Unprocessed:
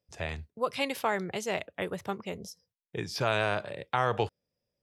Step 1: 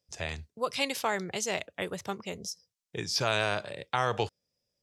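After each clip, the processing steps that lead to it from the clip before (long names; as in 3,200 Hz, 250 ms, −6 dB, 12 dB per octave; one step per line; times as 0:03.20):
parametric band 6,200 Hz +10.5 dB 1.6 octaves
level −1.5 dB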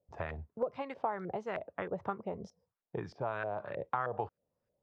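downward compressor, threshold −36 dBFS, peak gain reduction 13 dB
auto-filter low-pass saw up 3.2 Hz 580–1,600 Hz
level +1.5 dB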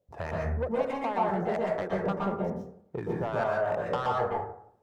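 running median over 9 samples
soft clipping −29.5 dBFS, distortion −12 dB
dense smooth reverb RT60 0.64 s, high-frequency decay 0.4×, pre-delay 110 ms, DRR −3.5 dB
level +4.5 dB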